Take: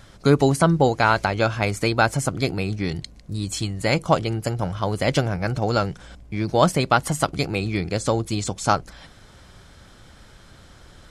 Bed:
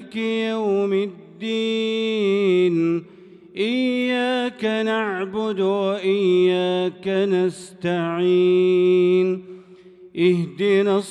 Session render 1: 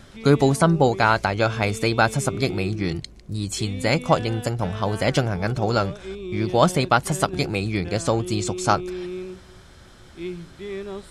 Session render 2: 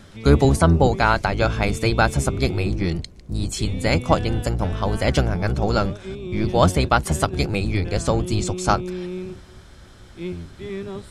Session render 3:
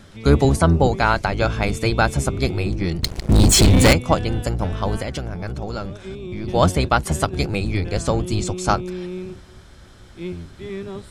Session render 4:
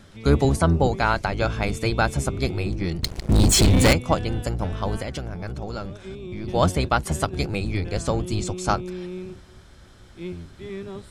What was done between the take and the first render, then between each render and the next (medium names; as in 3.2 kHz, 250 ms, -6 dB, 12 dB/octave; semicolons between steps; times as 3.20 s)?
add bed -15 dB
octave divider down 1 oct, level +1 dB
3.03–3.93 s: waveshaping leveller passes 5; 5.02–6.48 s: compression 2.5:1, threshold -27 dBFS
trim -3.5 dB